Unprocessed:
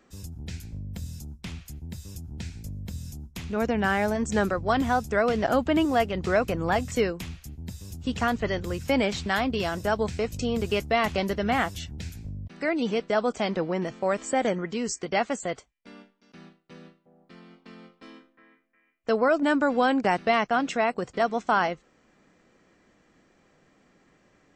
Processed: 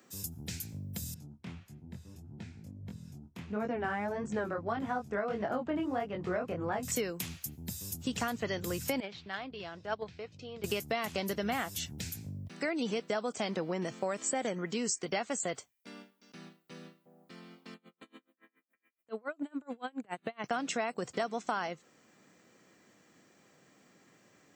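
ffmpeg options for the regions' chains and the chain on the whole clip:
-filter_complex "[0:a]asettb=1/sr,asplit=3[a][b][c];[a]atrim=end=1.144[d];[b]atrim=start=1.14:end=6.83,asetpts=PTS-STARTPTS,afade=t=in:d=0.004:c=qsin,afade=t=out:st=5.686:d=0.004:c=qsin,lowpass=1.6k,aemphasis=mode=production:type=50fm,flanger=delay=19:depth=5.2:speed=1.6[e];[c]atrim=start=6.826[f];[d][e]acrossfade=d=0.004:c1=hsin:c2=qsin[g];[g][f]acrossfade=d=0.004:c1=qsin:c2=hsin,asettb=1/sr,asplit=3[h][i][j];[h]atrim=end=9.004[k];[i]atrim=start=9:end=10.64,asetpts=PTS-STARTPTS,afade=t=in:d=0.004:c=qsin,afade=t=out:st=1.636:d=0.004:c=qsin,lowpass=f=4.3k:w=0.5412,lowpass=f=4.3k:w=1.3066,agate=range=-13dB:threshold=-23dB:ratio=16:release=100:detection=peak,equalizer=f=230:t=o:w=0.24:g=-8.5[l];[j]atrim=start=10.636[m];[k][l]acrossfade=d=0.004:c1=hsin:c2=qsin[n];[n][m]acrossfade=d=0.004:c1=qsin:c2=hsin,asettb=1/sr,asplit=3[o][p][q];[o]atrim=end=17.744[r];[p]atrim=start=17.74:end=20.44,asetpts=PTS-STARTPTS,afade=t=in:d=0.004:c=qsin,afade=t=out:st=2.696:d=0.004:c=qsin,acompressor=threshold=-27dB:ratio=12:attack=3.2:release=140:knee=1:detection=peak,asuperstop=centerf=5300:order=4:qfactor=2,aeval=exprs='val(0)*pow(10,-33*(0.5-0.5*cos(2*PI*7.1*n/s))/20)':c=same[s];[q]atrim=start=20.436[t];[r][s]acrossfade=d=0.004:c1=hsin:c2=qsin[u];[u][t]acrossfade=d=0.004:c1=qsin:c2=hsin,highpass=f=96:w=0.5412,highpass=f=96:w=1.3066,aemphasis=mode=production:type=50fm,acompressor=threshold=-28dB:ratio=6,volume=-2dB"

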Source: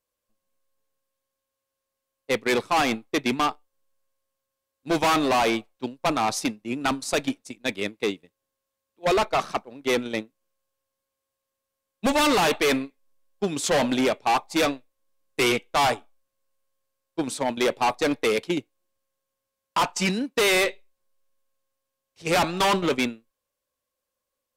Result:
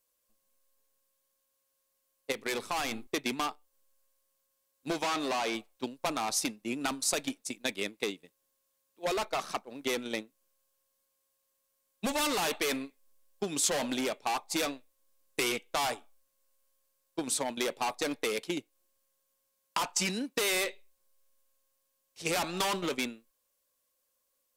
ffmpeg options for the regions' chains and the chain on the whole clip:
-filter_complex "[0:a]asettb=1/sr,asplit=3[a][b][c];[a]atrim=end=2.324[d];[b]atrim=start=2.32:end=3.07,asetpts=PTS-STARTPTS,afade=t=in:d=0.004:c=qsin,afade=t=out:st=0.746:d=0.004:c=qsin,asubboost=boost=11.5:cutoff=130,acompressor=threshold=-28dB:ratio=4:attack=3.2:release=140:knee=1:detection=peak,bandreject=f=50:t=h:w=6,bandreject=f=100:t=h:w=6,bandreject=f=150:t=h:w=6,bandreject=f=200:t=h:w=6,bandreject=f=250:t=h:w=6,bandreject=f=300:t=h:w=6,bandreject=f=350:t=h:w=6,bandreject=f=400:t=h:w=6[e];[c]atrim=start=3.066[f];[d][e]acrossfade=d=0.004:c1=hsin:c2=qsin[g];[g][f]acrossfade=d=0.004:c1=qsin:c2=hsin,asettb=1/sr,asplit=3[h][i][j];[h]atrim=end=4.934[k];[i]atrim=start=4.93:end=5.55,asetpts=PTS-STARTPTS,afade=t=in:d=0.004:c=qsin,afade=t=out:st=0.616:d=0.004:c=qsin,acrossover=split=7800[l][m];[m]acompressor=threshold=-50dB:ratio=4:attack=1:release=60[n];[l][n]amix=inputs=2:normalize=0,lowshelf=f=84:g=-10[o];[j]atrim=start=5.546[p];[k][o]acrossfade=d=0.004:c1=hsin:c2=qsin[q];[q][p]acrossfade=d=0.004:c1=qsin:c2=hsin,equalizer=f=91:t=o:w=1.4:g=-7,acompressor=threshold=-31dB:ratio=6,highshelf=f=5.1k:g=10"

